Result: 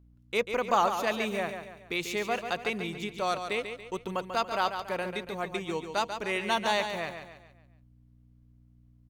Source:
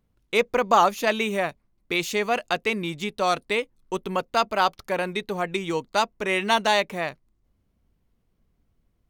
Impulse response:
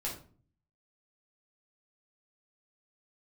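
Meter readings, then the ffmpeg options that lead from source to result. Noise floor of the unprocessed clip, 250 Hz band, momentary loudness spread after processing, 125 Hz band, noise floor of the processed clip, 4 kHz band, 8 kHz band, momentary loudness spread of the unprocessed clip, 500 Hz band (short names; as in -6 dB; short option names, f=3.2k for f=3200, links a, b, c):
-71 dBFS, -6.0 dB, 9 LU, -6.0 dB, -60 dBFS, -6.0 dB, -6.0 dB, 8 LU, -6.5 dB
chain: -af "aeval=exprs='val(0)+0.00316*(sin(2*PI*60*n/s)+sin(2*PI*2*60*n/s)/2+sin(2*PI*3*60*n/s)/3+sin(2*PI*4*60*n/s)/4+sin(2*PI*5*60*n/s)/5)':c=same,aecho=1:1:141|282|423|564|705:0.398|0.167|0.0702|0.0295|0.0124,volume=-7dB"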